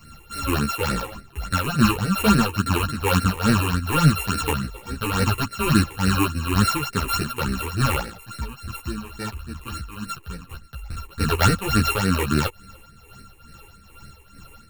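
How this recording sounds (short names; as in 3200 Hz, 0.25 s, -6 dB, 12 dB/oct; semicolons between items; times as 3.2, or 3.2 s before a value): a buzz of ramps at a fixed pitch in blocks of 32 samples; phasing stages 8, 3.5 Hz, lowest notch 180–1000 Hz; tremolo triangle 2.3 Hz, depth 65%; a shimmering, thickened sound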